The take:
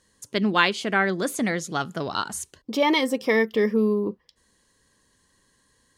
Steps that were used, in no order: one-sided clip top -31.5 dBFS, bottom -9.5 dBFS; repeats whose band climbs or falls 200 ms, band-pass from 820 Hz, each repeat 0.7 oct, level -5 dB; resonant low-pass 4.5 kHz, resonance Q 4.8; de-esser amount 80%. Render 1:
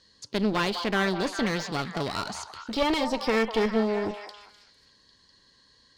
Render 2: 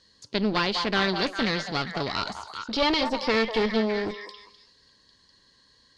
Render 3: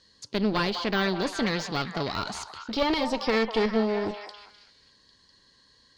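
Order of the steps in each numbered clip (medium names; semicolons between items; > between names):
resonant low-pass > de-esser > one-sided clip > repeats whose band climbs or falls; repeats whose band climbs or falls > de-esser > one-sided clip > resonant low-pass; one-sided clip > resonant low-pass > de-esser > repeats whose band climbs or falls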